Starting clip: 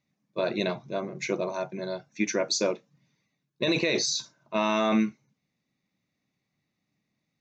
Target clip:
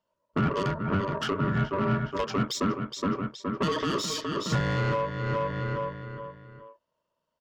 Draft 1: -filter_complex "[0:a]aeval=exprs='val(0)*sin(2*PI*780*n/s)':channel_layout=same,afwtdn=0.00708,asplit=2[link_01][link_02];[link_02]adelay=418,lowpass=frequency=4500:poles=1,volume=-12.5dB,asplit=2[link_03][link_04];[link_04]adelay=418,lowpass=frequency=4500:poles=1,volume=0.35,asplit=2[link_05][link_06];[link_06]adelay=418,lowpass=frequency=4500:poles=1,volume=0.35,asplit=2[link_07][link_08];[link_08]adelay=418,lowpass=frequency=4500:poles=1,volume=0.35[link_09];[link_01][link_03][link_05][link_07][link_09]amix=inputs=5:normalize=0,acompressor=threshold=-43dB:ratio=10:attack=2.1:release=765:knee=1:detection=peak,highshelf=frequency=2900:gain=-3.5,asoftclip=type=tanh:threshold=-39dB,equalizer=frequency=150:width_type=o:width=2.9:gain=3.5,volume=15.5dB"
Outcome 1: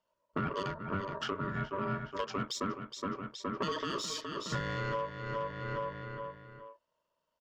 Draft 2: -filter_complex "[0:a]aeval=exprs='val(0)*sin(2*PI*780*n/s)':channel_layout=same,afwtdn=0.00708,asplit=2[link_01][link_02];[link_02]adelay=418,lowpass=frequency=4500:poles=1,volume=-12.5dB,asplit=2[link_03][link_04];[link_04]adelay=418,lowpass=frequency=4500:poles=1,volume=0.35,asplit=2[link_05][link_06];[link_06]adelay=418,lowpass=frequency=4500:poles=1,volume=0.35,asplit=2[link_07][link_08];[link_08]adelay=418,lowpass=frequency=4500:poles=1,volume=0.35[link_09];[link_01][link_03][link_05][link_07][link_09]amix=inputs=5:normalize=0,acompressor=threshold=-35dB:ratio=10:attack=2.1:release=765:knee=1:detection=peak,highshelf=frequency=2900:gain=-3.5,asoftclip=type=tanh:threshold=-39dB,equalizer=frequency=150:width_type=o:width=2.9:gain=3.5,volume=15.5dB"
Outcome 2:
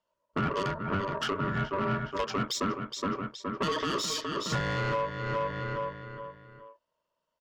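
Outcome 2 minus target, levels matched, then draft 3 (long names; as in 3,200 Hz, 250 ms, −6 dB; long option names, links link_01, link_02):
125 Hz band −3.0 dB
-filter_complex "[0:a]aeval=exprs='val(0)*sin(2*PI*780*n/s)':channel_layout=same,afwtdn=0.00708,asplit=2[link_01][link_02];[link_02]adelay=418,lowpass=frequency=4500:poles=1,volume=-12.5dB,asplit=2[link_03][link_04];[link_04]adelay=418,lowpass=frequency=4500:poles=1,volume=0.35,asplit=2[link_05][link_06];[link_06]adelay=418,lowpass=frequency=4500:poles=1,volume=0.35,asplit=2[link_07][link_08];[link_08]adelay=418,lowpass=frequency=4500:poles=1,volume=0.35[link_09];[link_01][link_03][link_05][link_07][link_09]amix=inputs=5:normalize=0,acompressor=threshold=-35dB:ratio=10:attack=2.1:release=765:knee=1:detection=peak,highshelf=frequency=2900:gain=-3.5,asoftclip=type=tanh:threshold=-39dB,equalizer=frequency=150:width_type=o:width=2.9:gain=9.5,volume=15.5dB"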